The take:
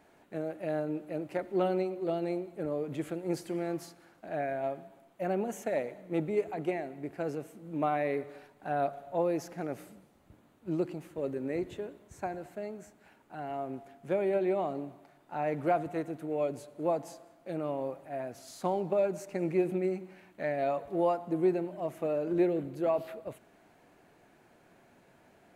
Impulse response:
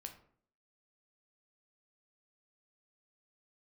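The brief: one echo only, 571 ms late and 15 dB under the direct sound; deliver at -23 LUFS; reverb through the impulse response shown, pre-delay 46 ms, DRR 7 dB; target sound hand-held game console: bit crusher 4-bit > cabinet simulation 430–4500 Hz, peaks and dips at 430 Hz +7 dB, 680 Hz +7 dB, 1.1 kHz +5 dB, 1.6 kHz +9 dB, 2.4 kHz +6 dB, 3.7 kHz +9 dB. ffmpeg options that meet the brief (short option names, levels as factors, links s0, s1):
-filter_complex "[0:a]aecho=1:1:571:0.178,asplit=2[s0][s1];[1:a]atrim=start_sample=2205,adelay=46[s2];[s1][s2]afir=irnorm=-1:irlink=0,volume=0.75[s3];[s0][s3]amix=inputs=2:normalize=0,acrusher=bits=3:mix=0:aa=0.000001,highpass=430,equalizer=f=430:t=q:w=4:g=7,equalizer=f=680:t=q:w=4:g=7,equalizer=f=1100:t=q:w=4:g=5,equalizer=f=1600:t=q:w=4:g=9,equalizer=f=2400:t=q:w=4:g=6,equalizer=f=3700:t=q:w=4:g=9,lowpass=f=4500:w=0.5412,lowpass=f=4500:w=1.3066,volume=1.78"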